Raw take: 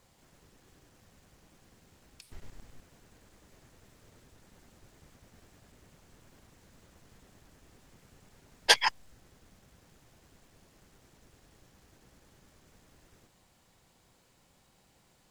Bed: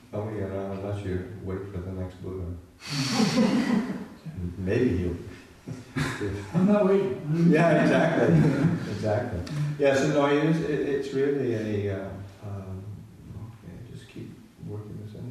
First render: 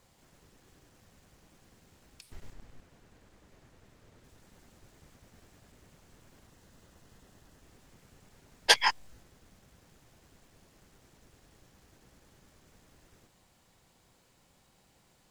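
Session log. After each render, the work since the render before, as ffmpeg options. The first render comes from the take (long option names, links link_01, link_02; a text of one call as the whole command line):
ffmpeg -i in.wav -filter_complex "[0:a]asettb=1/sr,asplit=3[link_01][link_02][link_03];[link_01]atrim=end=2.534[link_04];[link_02]atrim=start=2.53:end=4.24,asetpts=PTS-STARTPTS,afade=type=in:duration=0.004:curve=qsin,afade=type=out:start_time=1.706:duration=0.004:curve=qsin,highshelf=frequency=5100:gain=-7.5[link_05];[link_03]atrim=start=4.236[link_06];[link_04][link_05]acrossfade=duration=0.004:curve1=hsin:curve2=qsin[link_07];[link_07][link_06]acrossfade=duration=0.004:curve1=qsin:curve2=hsin,asettb=1/sr,asplit=3[link_08][link_09][link_10];[link_08]atrim=end=6.464[link_11];[link_09]atrim=start=6.46:end=7.62,asetpts=PTS-STARTPTS,afade=type=in:duration=0.004:curve=qsin,afade=type=out:start_time=1.156:duration=0.004:curve=qsin,bandreject=frequency=2300:width=11[link_12];[link_10]atrim=start=7.616[link_13];[link_11][link_12]acrossfade=duration=0.004:curve1=hsin:curve2=qsin[link_14];[link_14][link_13]acrossfade=duration=0.004:curve1=qsin:curve2=hsin,asettb=1/sr,asplit=3[link_15][link_16][link_17];[link_15]atrim=end=8.784[link_18];[link_16]atrim=start=8.78:end=9.23,asetpts=PTS-STARTPTS,afade=type=in:duration=0.004:curve=qsin,afade=type=out:start_time=0.446:duration=0.004:curve=qsin,asplit=2[link_19][link_20];[link_20]adelay=20,volume=-3dB[link_21];[link_19][link_21]amix=inputs=2:normalize=0,atrim=end_sample=19845[link_22];[link_17]atrim=start=9.226[link_23];[link_18][link_22]acrossfade=duration=0.004:curve1=hsin:curve2=qsin[link_24];[link_24][link_23]acrossfade=duration=0.004:curve1=qsin:curve2=hsin" out.wav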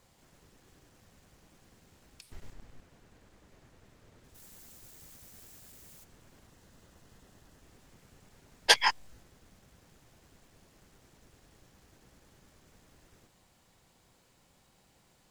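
ffmpeg -i in.wav -filter_complex "[0:a]asplit=3[link_01][link_02][link_03];[link_01]afade=type=out:start_time=4.34:duration=0.02[link_04];[link_02]aemphasis=mode=production:type=75fm,afade=type=in:start_time=4.34:duration=0.02,afade=type=out:start_time=6.03:duration=0.02[link_05];[link_03]afade=type=in:start_time=6.03:duration=0.02[link_06];[link_04][link_05][link_06]amix=inputs=3:normalize=0" out.wav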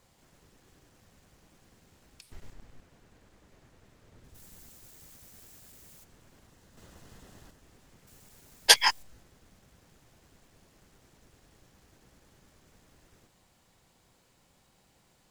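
ffmpeg -i in.wav -filter_complex "[0:a]asettb=1/sr,asplit=3[link_01][link_02][link_03];[link_01]atrim=end=4.124[link_04];[link_02]atrim=start=4.12:end=4.69,asetpts=PTS-STARTPTS,afade=type=in:duration=0.004:curve=qsin,afade=type=out:start_time=0.566:duration=0.004:curve=qsin,lowshelf=frequency=180:gain=6.5[link_05];[link_03]atrim=start=4.686[link_06];[link_04][link_05]acrossfade=duration=0.004:curve1=hsin:curve2=qsin[link_07];[link_07][link_06]acrossfade=duration=0.004:curve1=qsin:curve2=hsin,asettb=1/sr,asplit=3[link_08][link_09][link_10];[link_08]atrim=end=6.774[link_11];[link_09]atrim=start=6.77:end=7.51,asetpts=PTS-STARTPTS,afade=type=in:duration=0.004:curve=qsin,afade=type=out:start_time=0.736:duration=0.004:curve=qsin,acontrast=52[link_12];[link_10]atrim=start=7.506[link_13];[link_11][link_12]acrossfade=duration=0.004:curve1=hsin:curve2=qsin[link_14];[link_14][link_13]acrossfade=duration=0.004:curve1=qsin:curve2=hsin,asettb=1/sr,asplit=3[link_15][link_16][link_17];[link_15]atrim=end=8.074[link_18];[link_16]atrim=start=8.07:end=9.03,asetpts=PTS-STARTPTS,afade=type=in:duration=0.004:curve=qsin,afade=type=out:start_time=0.956:duration=0.004:curve=qsin,aemphasis=mode=production:type=50kf[link_19];[link_17]atrim=start=9.026[link_20];[link_18][link_19]acrossfade=duration=0.004:curve1=hsin:curve2=qsin[link_21];[link_21][link_20]acrossfade=duration=0.004:curve1=qsin:curve2=hsin" out.wav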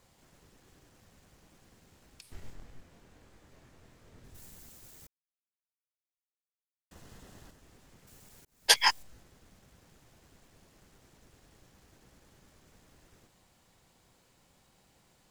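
ffmpeg -i in.wav -filter_complex "[0:a]asettb=1/sr,asplit=3[link_01][link_02][link_03];[link_01]atrim=end=2.224[link_04];[link_02]atrim=start=2.22:end=4.51,asetpts=PTS-STARTPTS,afade=type=in:duration=0.004:curve=qsin,afade=type=out:start_time=2.286:duration=0.004:curve=qsin,asplit=2[link_05][link_06];[link_06]adelay=23,volume=-5dB[link_07];[link_05][link_07]amix=inputs=2:normalize=0,atrim=end_sample=100989[link_08];[link_03]atrim=start=4.506[link_09];[link_04][link_08]acrossfade=duration=0.004:curve1=hsin:curve2=qsin[link_10];[link_10][link_09]acrossfade=duration=0.004:curve1=qsin:curve2=hsin,asplit=4[link_11][link_12][link_13][link_14];[link_11]atrim=end=5.07,asetpts=PTS-STARTPTS,afade=type=out:start_time=5.066:duration=0.004:curve=hsin[link_15];[link_12]atrim=start=5.07:end=6.91,asetpts=PTS-STARTPTS,volume=0[link_16];[link_13]atrim=start=6.91:end=8.45,asetpts=PTS-STARTPTS,afade=type=in:duration=0.004:curve=hsin,afade=type=out:start_time=1.536:duration=0.004:curve=hsin[link_17];[link_14]atrim=start=8.45,asetpts=PTS-STARTPTS,afade=type=in:duration=0.43[link_18];[link_15][link_16][link_17][link_18]concat=n=4:v=0:a=1" out.wav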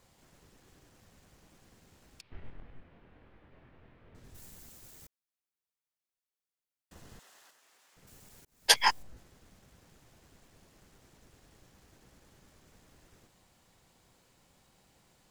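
ffmpeg -i in.wav -filter_complex "[0:a]asettb=1/sr,asplit=3[link_01][link_02][link_03];[link_01]atrim=end=2.214[link_04];[link_02]atrim=start=2.21:end=4.15,asetpts=PTS-STARTPTS,afade=type=in:duration=0.004:curve=qsin,afade=type=out:start_time=1.936:duration=0.004:curve=qsin,lowpass=frequency=3000:width=0.5412,lowpass=frequency=3000:width=1.3066[link_05];[link_03]atrim=start=4.146[link_06];[link_04][link_05]acrossfade=duration=0.004:curve1=hsin:curve2=qsin[link_07];[link_07][link_06]acrossfade=duration=0.004:curve1=qsin:curve2=hsin,asettb=1/sr,asplit=3[link_08][link_09][link_10];[link_08]atrim=end=7.194[link_11];[link_09]atrim=start=7.19:end=7.97,asetpts=PTS-STARTPTS,afade=type=in:duration=0.004:curve=qsin,afade=type=out:start_time=0.776:duration=0.004:curve=qsin,highpass=870[link_12];[link_10]atrim=start=7.966[link_13];[link_11][link_12]acrossfade=duration=0.004:curve1=hsin:curve2=qsin[link_14];[link_14][link_13]acrossfade=duration=0.004:curve1=qsin:curve2=hsin,asettb=1/sr,asplit=3[link_15][link_16][link_17];[link_15]atrim=end=8.724[link_18];[link_16]atrim=start=8.72:end=9.17,asetpts=PTS-STARTPTS,afade=type=in:duration=0.004:curve=qsin,afade=type=out:start_time=0.446:duration=0.004:curve=qsin,tiltshelf=frequency=1400:gain=4.5[link_19];[link_17]atrim=start=9.166[link_20];[link_18][link_19]acrossfade=duration=0.004:curve1=hsin:curve2=qsin[link_21];[link_21][link_20]acrossfade=duration=0.004:curve1=qsin:curve2=hsin" out.wav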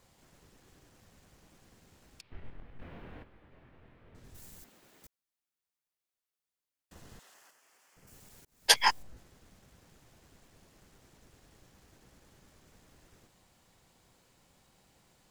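ffmpeg -i in.wav -filter_complex "[0:a]asplit=3[link_01][link_02][link_03];[link_01]afade=type=out:start_time=2.78:duration=0.02[link_04];[link_02]aeval=exprs='0.0126*sin(PI/2*2.51*val(0)/0.0126)':channel_layout=same,afade=type=in:start_time=2.78:duration=0.02,afade=type=out:start_time=3.22:duration=0.02[link_05];[link_03]afade=type=in:start_time=3.22:duration=0.02[link_06];[link_04][link_05][link_06]amix=inputs=3:normalize=0,asettb=1/sr,asplit=3[link_07][link_08][link_09];[link_07]atrim=end=4.644[link_10];[link_08]atrim=start=4.64:end=5.04,asetpts=PTS-STARTPTS,afade=type=in:duration=0.004:curve=qsin,afade=type=out:start_time=0.396:duration=0.004:curve=qsin,acrossover=split=170 3800:gain=0.0891 1 0.224[link_11][link_12][link_13];[link_11][link_12][link_13]amix=inputs=3:normalize=0[link_14];[link_09]atrim=start=5.036[link_15];[link_10][link_14]acrossfade=duration=0.004:curve1=hsin:curve2=qsin[link_16];[link_16][link_15]acrossfade=duration=0.004:curve1=qsin:curve2=hsin,asettb=1/sr,asplit=3[link_17][link_18][link_19];[link_17]atrim=end=7.344[link_20];[link_18]atrim=start=7.34:end=8.14,asetpts=PTS-STARTPTS,afade=type=in:duration=0.004:curve=qsin,afade=type=out:start_time=0.796:duration=0.004:curve=qsin,equalizer=frequency=3800:width_type=o:width=0.33:gain=-9.5[link_21];[link_19]atrim=start=8.136[link_22];[link_20][link_21]acrossfade=duration=0.004:curve1=hsin:curve2=qsin[link_23];[link_23][link_22]acrossfade=duration=0.004:curve1=qsin:curve2=hsin" out.wav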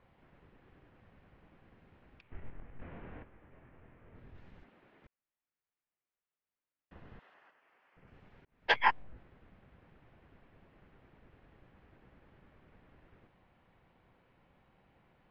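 ffmpeg -i in.wav -af "lowpass=frequency=2600:width=0.5412,lowpass=frequency=2600:width=1.3066" out.wav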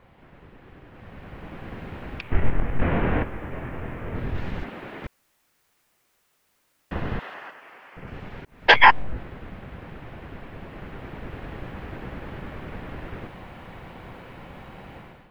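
ffmpeg -i in.wav -af "dynaudnorm=framelen=880:gausssize=3:maxgain=14.5dB,alimiter=level_in=11.5dB:limit=-1dB:release=50:level=0:latency=1" out.wav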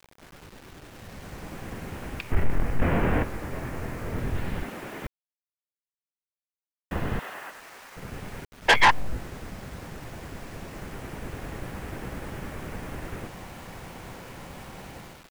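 ffmpeg -i in.wav -af "acrusher=bits=7:mix=0:aa=0.000001,asoftclip=type=tanh:threshold=-11dB" out.wav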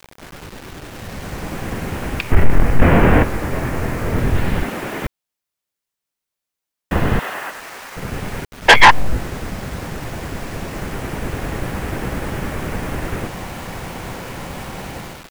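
ffmpeg -i in.wav -af "volume=12dB,alimiter=limit=-1dB:level=0:latency=1" out.wav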